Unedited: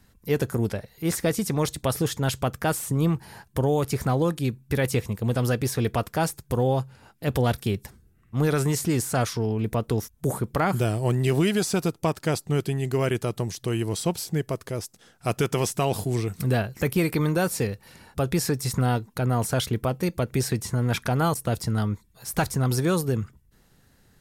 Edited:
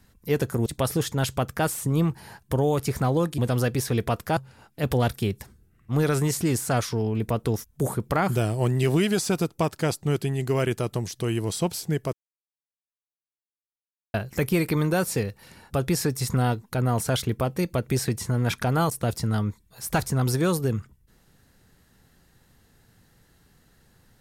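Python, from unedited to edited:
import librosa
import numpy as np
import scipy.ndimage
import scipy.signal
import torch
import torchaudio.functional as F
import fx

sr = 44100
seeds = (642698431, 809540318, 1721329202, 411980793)

y = fx.edit(x, sr, fx.cut(start_s=0.66, length_s=1.05),
    fx.cut(start_s=4.43, length_s=0.82),
    fx.cut(start_s=6.24, length_s=0.57),
    fx.silence(start_s=14.57, length_s=2.01), tone=tone)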